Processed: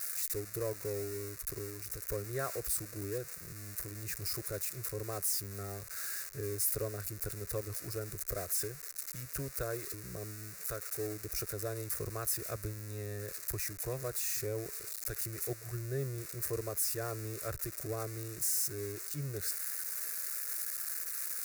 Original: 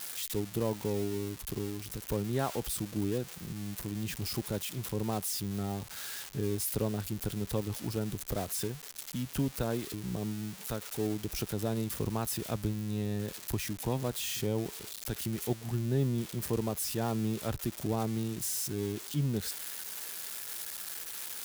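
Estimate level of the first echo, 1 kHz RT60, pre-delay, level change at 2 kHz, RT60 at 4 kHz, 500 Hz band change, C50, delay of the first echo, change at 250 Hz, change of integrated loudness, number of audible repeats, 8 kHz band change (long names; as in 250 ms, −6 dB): no echo audible, no reverb audible, no reverb audible, −0.5 dB, no reverb audible, −3.5 dB, no reverb audible, no echo audible, −12.5 dB, −2.0 dB, no echo audible, +2.0 dB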